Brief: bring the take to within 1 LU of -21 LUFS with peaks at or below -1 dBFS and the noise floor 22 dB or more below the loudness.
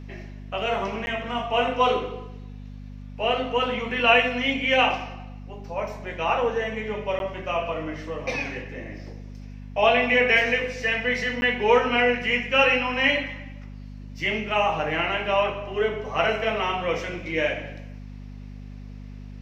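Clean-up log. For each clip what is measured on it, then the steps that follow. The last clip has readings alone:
dropouts 3; longest dropout 11 ms; hum 50 Hz; harmonics up to 250 Hz; hum level -36 dBFS; loudness -23.5 LUFS; peak -4.0 dBFS; loudness target -21.0 LUFS
-> interpolate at 1.06/7.19/11.41, 11 ms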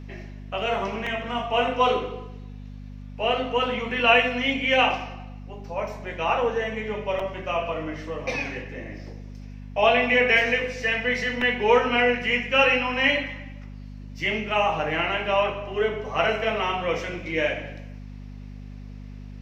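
dropouts 0; hum 50 Hz; harmonics up to 250 Hz; hum level -36 dBFS
-> de-hum 50 Hz, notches 5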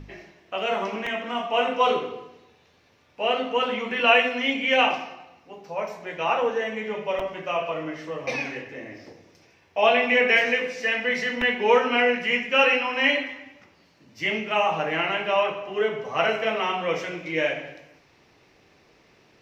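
hum none; loudness -23.5 LUFS; peak -4.5 dBFS; loudness target -21.0 LUFS
-> gain +2.5 dB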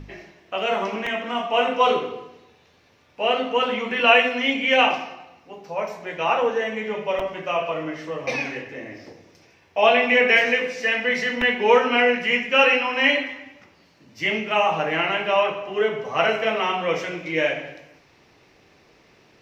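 loudness -21.0 LUFS; peak -2.0 dBFS; noise floor -57 dBFS

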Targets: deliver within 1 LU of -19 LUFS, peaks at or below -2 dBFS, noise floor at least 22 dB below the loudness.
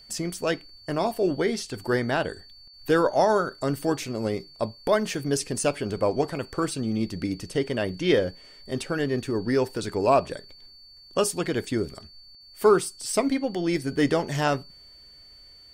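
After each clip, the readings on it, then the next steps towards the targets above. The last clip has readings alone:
steady tone 4500 Hz; tone level -48 dBFS; loudness -26.0 LUFS; peak -7.5 dBFS; loudness target -19.0 LUFS
-> notch 4500 Hz, Q 30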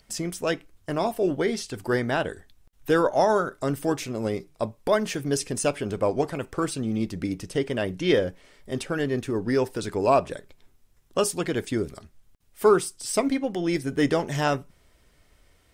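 steady tone none; loudness -26.0 LUFS; peak -7.5 dBFS; loudness target -19.0 LUFS
-> gain +7 dB; limiter -2 dBFS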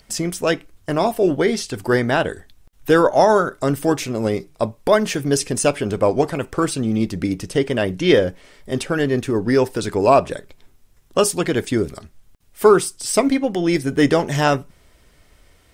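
loudness -19.0 LUFS; peak -2.0 dBFS; noise floor -55 dBFS

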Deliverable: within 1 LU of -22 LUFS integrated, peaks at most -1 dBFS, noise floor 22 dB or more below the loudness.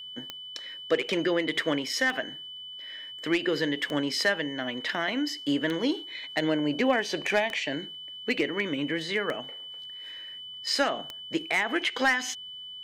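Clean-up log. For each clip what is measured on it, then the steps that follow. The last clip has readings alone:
clicks 7; steady tone 3000 Hz; tone level -39 dBFS; loudness -28.5 LUFS; peak -13.5 dBFS; loudness target -22.0 LUFS
-> de-click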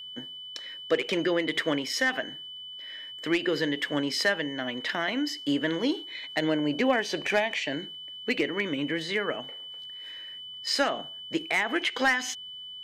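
clicks 0; steady tone 3000 Hz; tone level -39 dBFS
-> notch 3000 Hz, Q 30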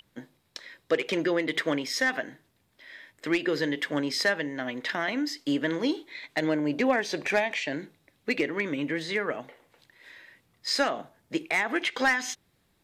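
steady tone none; loudness -28.5 LUFS; peak -13.0 dBFS; loudness target -22.0 LUFS
-> gain +6.5 dB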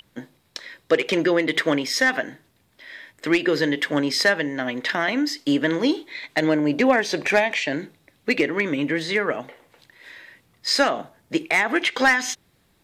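loudness -22.0 LUFS; peak -6.5 dBFS; noise floor -63 dBFS

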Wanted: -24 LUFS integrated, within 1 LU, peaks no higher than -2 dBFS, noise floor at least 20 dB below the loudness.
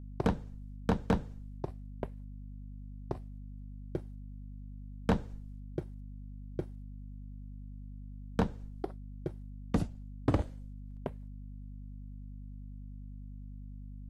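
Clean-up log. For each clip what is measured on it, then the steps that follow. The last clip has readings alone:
clipped 0.3%; flat tops at -20.5 dBFS; hum 50 Hz; harmonics up to 250 Hz; hum level -42 dBFS; loudness -40.0 LUFS; peak -20.5 dBFS; loudness target -24.0 LUFS
-> clip repair -20.5 dBFS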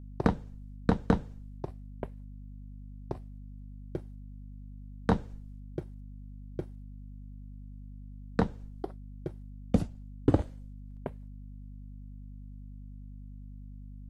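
clipped 0.0%; hum 50 Hz; harmonics up to 250 Hz; hum level -42 dBFS
-> notches 50/100/150/200/250 Hz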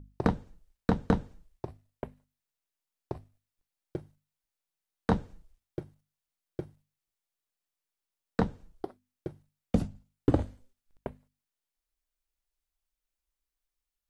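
hum none; loudness -35.0 LUFS; peak -11.0 dBFS; loudness target -24.0 LUFS
-> gain +11 dB; limiter -2 dBFS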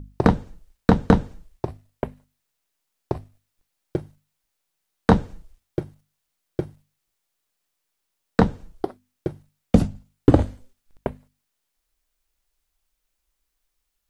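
loudness -24.5 LUFS; peak -2.0 dBFS; noise floor -78 dBFS

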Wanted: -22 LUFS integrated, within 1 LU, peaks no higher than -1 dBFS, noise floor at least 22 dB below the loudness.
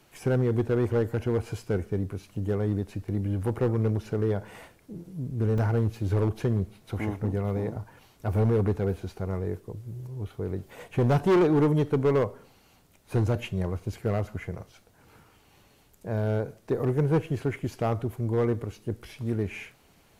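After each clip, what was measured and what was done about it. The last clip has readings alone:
clipped 1.4%; flat tops at -17.5 dBFS; dropouts 1; longest dropout 3.3 ms; loudness -28.0 LUFS; peak -17.5 dBFS; loudness target -22.0 LUFS
-> clip repair -17.5 dBFS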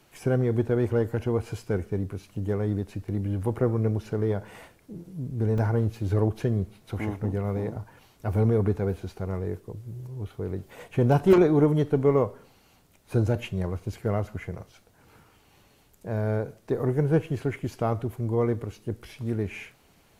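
clipped 0.0%; dropouts 1; longest dropout 3.3 ms
-> interpolate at 5.58, 3.3 ms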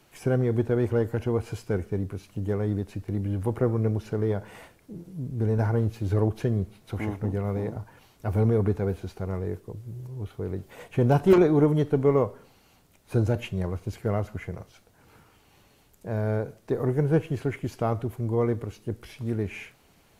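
dropouts 0; loudness -27.0 LUFS; peak -8.5 dBFS; loudness target -22.0 LUFS
-> gain +5 dB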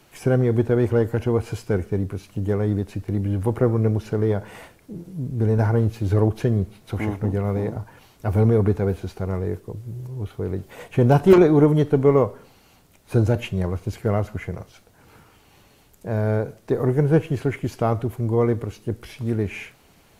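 loudness -22.0 LUFS; peak -3.5 dBFS; noise floor -55 dBFS

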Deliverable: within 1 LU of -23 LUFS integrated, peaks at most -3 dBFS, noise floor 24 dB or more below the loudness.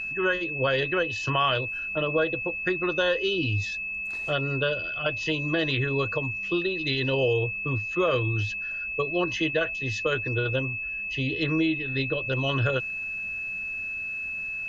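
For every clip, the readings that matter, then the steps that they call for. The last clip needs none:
steady tone 2600 Hz; tone level -30 dBFS; loudness -26.5 LUFS; peak -12.0 dBFS; loudness target -23.0 LUFS
-> notch 2600 Hz, Q 30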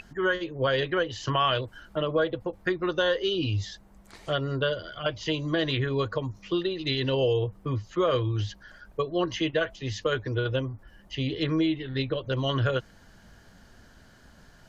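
steady tone none; loudness -28.0 LUFS; peak -13.0 dBFS; loudness target -23.0 LUFS
-> gain +5 dB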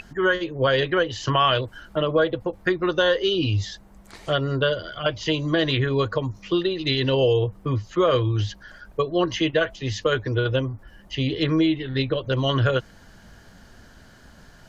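loudness -23.0 LUFS; peak -8.0 dBFS; noise floor -50 dBFS

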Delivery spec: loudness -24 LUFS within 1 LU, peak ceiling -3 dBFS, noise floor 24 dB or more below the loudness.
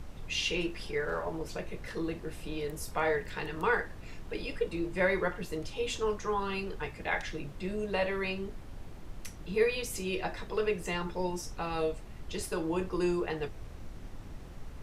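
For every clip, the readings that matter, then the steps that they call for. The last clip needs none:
noise floor -46 dBFS; noise floor target -58 dBFS; loudness -34.0 LUFS; peak -14.5 dBFS; loudness target -24.0 LUFS
-> noise print and reduce 12 dB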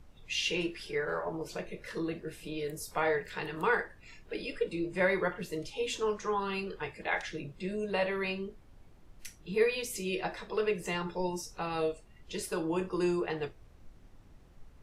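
noise floor -57 dBFS; noise floor target -58 dBFS
-> noise print and reduce 6 dB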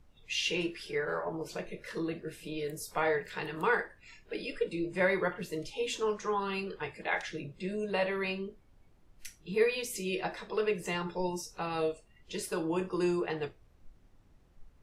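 noise floor -62 dBFS; loudness -34.0 LUFS; peak -15.0 dBFS; loudness target -24.0 LUFS
-> gain +10 dB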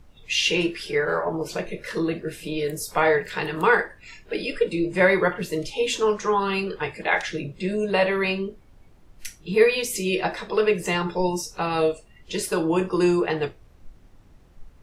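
loudness -24.0 LUFS; peak -5.0 dBFS; noise floor -52 dBFS

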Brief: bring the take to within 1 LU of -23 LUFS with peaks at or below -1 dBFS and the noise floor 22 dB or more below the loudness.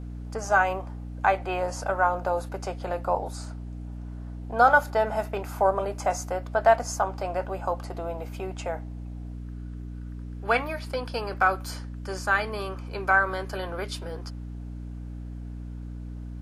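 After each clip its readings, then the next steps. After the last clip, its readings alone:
hum 60 Hz; harmonics up to 300 Hz; hum level -34 dBFS; loudness -27.0 LUFS; peak -6.5 dBFS; loudness target -23.0 LUFS
-> de-hum 60 Hz, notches 5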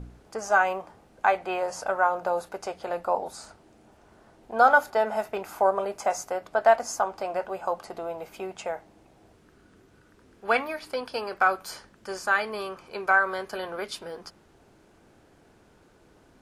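hum none; loudness -27.0 LUFS; peak -6.5 dBFS; loudness target -23.0 LUFS
-> gain +4 dB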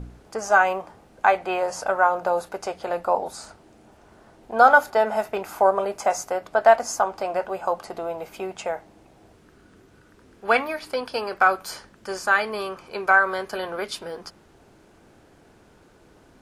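loudness -23.0 LUFS; peak -2.5 dBFS; noise floor -55 dBFS

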